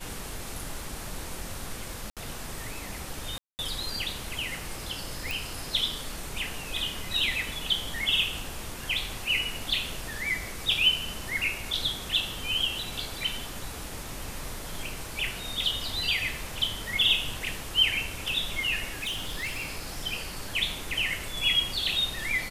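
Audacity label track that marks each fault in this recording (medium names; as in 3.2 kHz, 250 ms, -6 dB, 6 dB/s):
2.100000	2.170000	dropout 67 ms
3.380000	3.590000	dropout 209 ms
5.310000	5.310000	pop
18.840000	20.060000	clipped -28 dBFS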